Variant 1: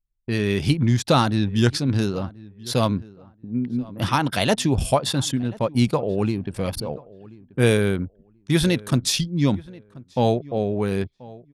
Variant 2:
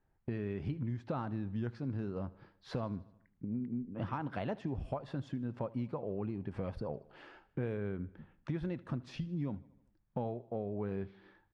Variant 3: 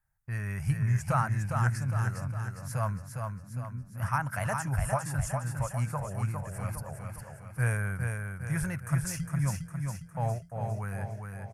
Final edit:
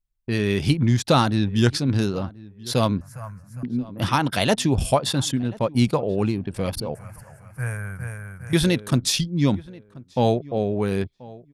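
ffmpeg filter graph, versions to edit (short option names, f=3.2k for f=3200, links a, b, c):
-filter_complex "[2:a]asplit=2[a][b];[0:a]asplit=3[c][d][e];[c]atrim=end=3.012[f];[a]atrim=start=3.008:end=3.632[g];[d]atrim=start=3.628:end=6.952[h];[b]atrim=start=6.948:end=8.532[i];[e]atrim=start=8.528[j];[f][g]acrossfade=d=0.004:c1=hsin:c2=hsin[k];[k][h]acrossfade=d=0.004:c1=hsin:c2=hsin[l];[l][i]acrossfade=d=0.004:c1=hsin:c2=hsin[m];[m][j]acrossfade=d=0.004:c1=hsin:c2=hsin"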